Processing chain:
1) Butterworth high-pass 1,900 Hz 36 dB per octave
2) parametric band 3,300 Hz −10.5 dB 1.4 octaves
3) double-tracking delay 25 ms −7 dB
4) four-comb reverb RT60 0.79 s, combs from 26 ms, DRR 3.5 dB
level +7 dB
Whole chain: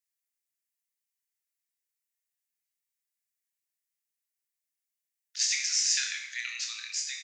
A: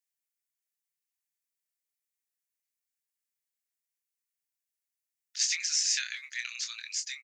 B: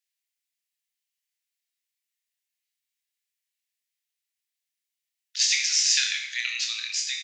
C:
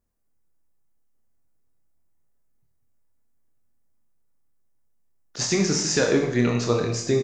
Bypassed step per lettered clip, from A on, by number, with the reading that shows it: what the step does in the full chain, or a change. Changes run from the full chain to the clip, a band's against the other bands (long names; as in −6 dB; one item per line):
4, change in integrated loudness −1.5 LU
2, change in integrated loudness +5.5 LU
1, change in crest factor −4.5 dB